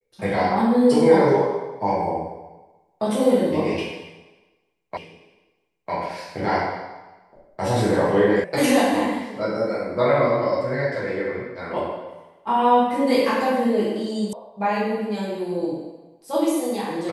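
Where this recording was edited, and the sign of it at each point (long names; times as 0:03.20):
0:04.97: the same again, the last 0.95 s
0:08.44: cut off before it has died away
0:14.33: cut off before it has died away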